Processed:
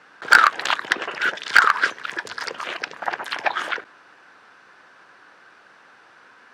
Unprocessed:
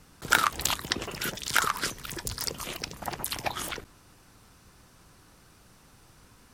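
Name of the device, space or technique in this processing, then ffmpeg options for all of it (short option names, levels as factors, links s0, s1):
megaphone: -af "highpass=500,lowpass=2900,equalizer=f=1600:t=o:w=0.41:g=9,asoftclip=type=hard:threshold=0.266,volume=2.82"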